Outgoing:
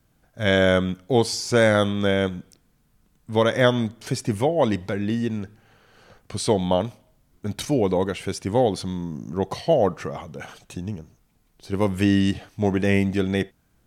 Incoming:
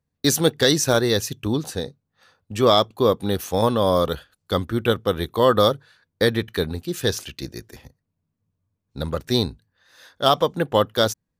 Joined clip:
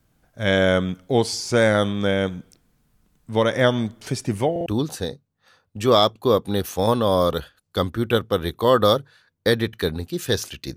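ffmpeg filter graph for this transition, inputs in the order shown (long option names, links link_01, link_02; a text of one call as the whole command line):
ffmpeg -i cue0.wav -i cue1.wav -filter_complex "[0:a]apad=whole_dur=10.76,atrim=end=10.76,asplit=3[link_01][link_02][link_03];[link_01]atrim=end=4.562[link_04];[link_02]atrim=start=4.508:end=4.562[link_05];[link_03]atrim=start=4.508:end=4.562[link_06];[1:a]atrim=start=1.408:end=7.51[link_07];[link_04][link_05]acrossfade=duration=0.004:curve1=hsin:curve2=hsin[link_08];[link_08][link_06]acrossfade=duration=0.004:curve1=hsin:curve2=hsin[link_09];[link_09][link_07]acrossfade=duration=0.004:curve1=hsin:curve2=hsin" out.wav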